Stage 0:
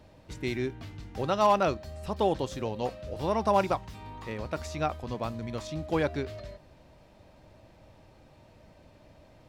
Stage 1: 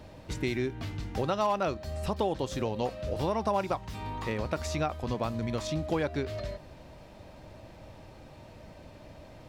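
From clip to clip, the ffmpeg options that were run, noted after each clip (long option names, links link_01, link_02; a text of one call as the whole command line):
ffmpeg -i in.wav -af "acompressor=threshold=-35dB:ratio=3,volume=6.5dB" out.wav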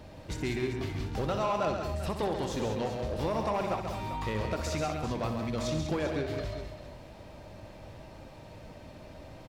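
ffmpeg -i in.wav -filter_complex "[0:a]asoftclip=type=tanh:threshold=-25dB,asplit=2[link_01][link_02];[link_02]aecho=0:1:64|136|195|393:0.335|0.447|0.355|0.251[link_03];[link_01][link_03]amix=inputs=2:normalize=0" out.wav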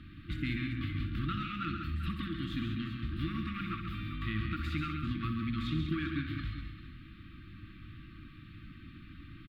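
ffmpeg -i in.wav -af "afftfilt=real='re*(1-between(b*sr/4096,350,1100))':imag='im*(1-between(b*sr/4096,350,1100))':win_size=4096:overlap=0.75,firequalizer=gain_entry='entry(3600,0);entry(5800,-26);entry(13000,-10)':delay=0.05:min_phase=1" out.wav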